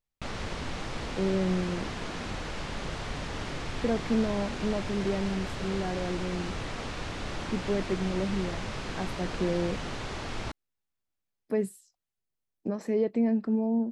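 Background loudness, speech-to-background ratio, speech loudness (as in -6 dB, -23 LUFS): -36.5 LUFS, 5.5 dB, -31.0 LUFS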